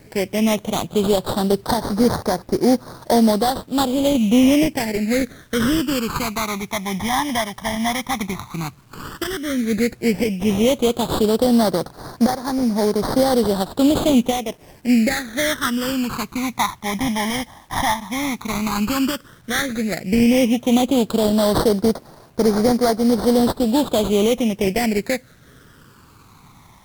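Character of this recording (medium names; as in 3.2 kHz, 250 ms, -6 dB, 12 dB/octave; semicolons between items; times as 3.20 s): aliases and images of a low sample rate 2.7 kHz, jitter 20%; phasing stages 12, 0.1 Hz, lowest notch 450–2700 Hz; a quantiser's noise floor 10-bit, dither none; Vorbis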